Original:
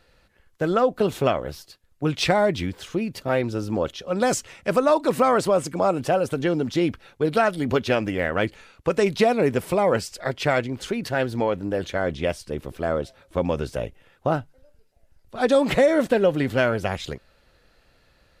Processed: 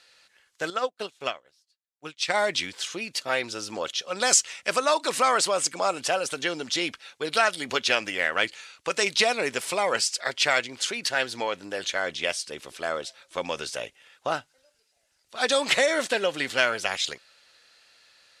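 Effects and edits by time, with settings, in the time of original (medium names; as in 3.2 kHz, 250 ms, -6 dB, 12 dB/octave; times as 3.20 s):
0.70–2.34 s: upward expansion 2.5:1, over -36 dBFS
whole clip: frequency weighting ITU-R 468; trim -1.5 dB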